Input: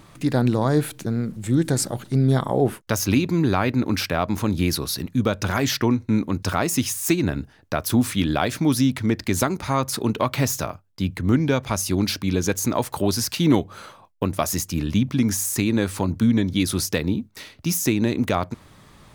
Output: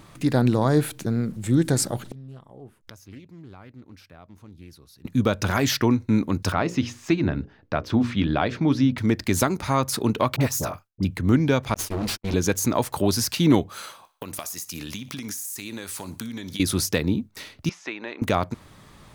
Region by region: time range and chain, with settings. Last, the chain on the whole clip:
2.04–5.05 low shelf 110 Hz +8.5 dB + flipped gate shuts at -22 dBFS, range -26 dB + Doppler distortion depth 1 ms
6.52–8.98 air absorption 200 m + notches 60/120/180/240/300/360/420/480/540 Hz
10.36–11.05 expander -54 dBFS + dynamic EQ 3100 Hz, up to -5 dB, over -41 dBFS, Q 0.74 + dispersion highs, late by 47 ms, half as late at 1000 Hz
11.74–12.34 minimum comb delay 9 ms + gate -29 dBFS, range -48 dB + hard clip -22.5 dBFS
13.69–16.6 tilt +3 dB/oct + compressor 20:1, threshold -29 dBFS + thinning echo 60 ms, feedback 47%, high-pass 390 Hz, level -18 dB
17.69–18.22 BPF 770–2700 Hz + air absorption 67 m + mismatched tape noise reduction decoder only
whole clip: dry

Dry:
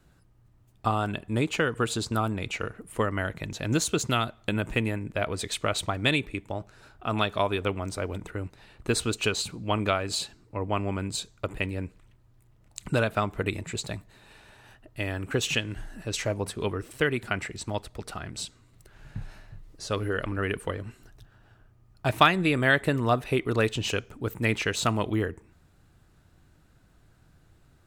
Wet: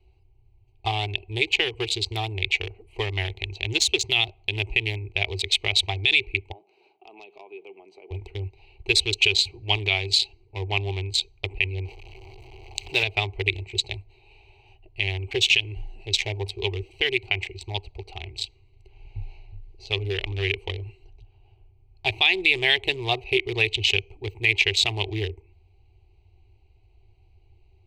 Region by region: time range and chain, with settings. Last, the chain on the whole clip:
6.52–8.11 steep high-pass 160 Hz 72 dB/oct + high shelf 3600 Hz -7.5 dB + compressor 2:1, threshold -48 dBFS
11.85–13.03 zero-crossing step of -32.5 dBFS + low shelf 180 Hz -10.5 dB
whole clip: Wiener smoothing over 25 samples; EQ curve 100 Hz 0 dB, 160 Hz -26 dB, 260 Hz -26 dB, 380 Hz +1 dB, 560 Hz -18 dB, 790 Hz 0 dB, 1400 Hz -24 dB, 2200 Hz +11 dB, 3800 Hz +11 dB, 10000 Hz -6 dB; maximiser +11 dB; gain -6 dB

